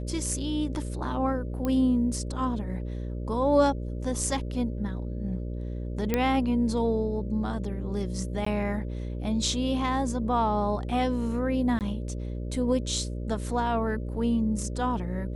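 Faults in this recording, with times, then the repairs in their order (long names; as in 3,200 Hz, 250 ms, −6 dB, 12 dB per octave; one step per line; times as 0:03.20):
mains buzz 60 Hz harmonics 10 −33 dBFS
0:01.65: click −17 dBFS
0:06.14: click −11 dBFS
0:08.45–0:08.46: drop-out 14 ms
0:11.79–0:11.81: drop-out 18 ms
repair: click removal
hum removal 60 Hz, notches 10
repair the gap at 0:08.45, 14 ms
repair the gap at 0:11.79, 18 ms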